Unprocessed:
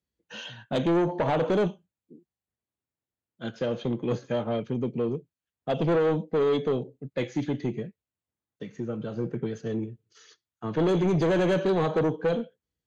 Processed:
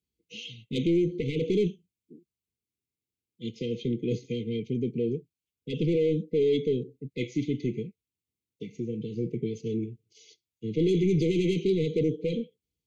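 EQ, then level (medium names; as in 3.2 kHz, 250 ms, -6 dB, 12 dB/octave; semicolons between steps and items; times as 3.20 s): brick-wall FIR band-stop 500–2000 Hz; 0.0 dB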